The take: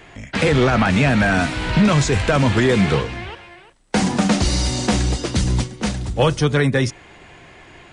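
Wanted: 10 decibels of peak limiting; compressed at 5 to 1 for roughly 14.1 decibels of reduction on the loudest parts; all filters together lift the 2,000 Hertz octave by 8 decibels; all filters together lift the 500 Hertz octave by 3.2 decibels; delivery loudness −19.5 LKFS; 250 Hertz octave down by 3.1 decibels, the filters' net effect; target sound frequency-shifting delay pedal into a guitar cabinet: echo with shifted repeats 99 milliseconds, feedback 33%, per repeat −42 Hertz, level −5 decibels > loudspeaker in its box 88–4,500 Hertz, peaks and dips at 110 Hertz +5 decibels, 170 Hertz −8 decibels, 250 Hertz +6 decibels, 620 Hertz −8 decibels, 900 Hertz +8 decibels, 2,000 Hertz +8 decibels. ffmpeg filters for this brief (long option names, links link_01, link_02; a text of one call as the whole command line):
ffmpeg -i in.wav -filter_complex "[0:a]equalizer=frequency=250:width_type=o:gain=-7,equalizer=frequency=500:width_type=o:gain=7.5,equalizer=frequency=2000:width_type=o:gain=4.5,acompressor=threshold=-25dB:ratio=5,alimiter=limit=-19.5dB:level=0:latency=1,asplit=5[link_01][link_02][link_03][link_04][link_05];[link_02]adelay=99,afreqshift=-42,volume=-5dB[link_06];[link_03]adelay=198,afreqshift=-84,volume=-14.6dB[link_07];[link_04]adelay=297,afreqshift=-126,volume=-24.3dB[link_08];[link_05]adelay=396,afreqshift=-168,volume=-33.9dB[link_09];[link_01][link_06][link_07][link_08][link_09]amix=inputs=5:normalize=0,highpass=88,equalizer=frequency=110:width_type=q:width=4:gain=5,equalizer=frequency=170:width_type=q:width=4:gain=-8,equalizer=frequency=250:width_type=q:width=4:gain=6,equalizer=frequency=620:width_type=q:width=4:gain=-8,equalizer=frequency=900:width_type=q:width=4:gain=8,equalizer=frequency=2000:width_type=q:width=4:gain=8,lowpass=frequency=4500:width=0.5412,lowpass=frequency=4500:width=1.3066,volume=8dB" out.wav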